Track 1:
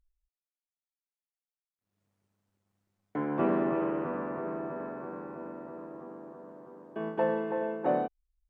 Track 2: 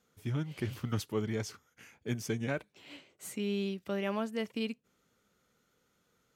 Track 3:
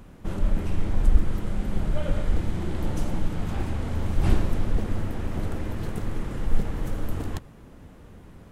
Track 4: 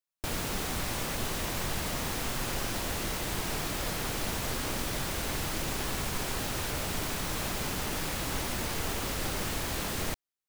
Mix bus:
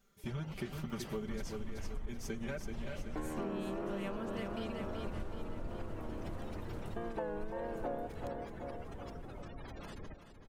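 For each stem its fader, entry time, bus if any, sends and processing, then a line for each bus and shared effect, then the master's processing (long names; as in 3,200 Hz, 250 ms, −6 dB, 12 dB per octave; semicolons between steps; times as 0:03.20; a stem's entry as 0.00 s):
−1.5 dB, 0.00 s, no send, echo send −11.5 dB, pitch vibrato 1.6 Hz 98 cents; high-shelf EQ 8,700 Hz +12 dB
−3.5 dB, 0.00 s, no send, echo send −6.5 dB, comb filter 5.1 ms, depth 94%
−14.0 dB, 0.90 s, no send, no echo send, upward compression, threshold −33 dBFS
−12.0 dB, 0.00 s, no send, echo send −10.5 dB, gate on every frequency bin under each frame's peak −15 dB strong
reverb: not used
echo: repeating echo 379 ms, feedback 53%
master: downward compressor 6 to 1, threshold −36 dBFS, peak gain reduction 13.5 dB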